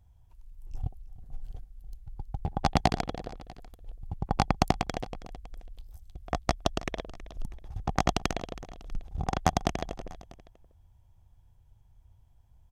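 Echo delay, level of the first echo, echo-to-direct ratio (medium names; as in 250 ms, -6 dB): 322 ms, -18.0 dB, -17.0 dB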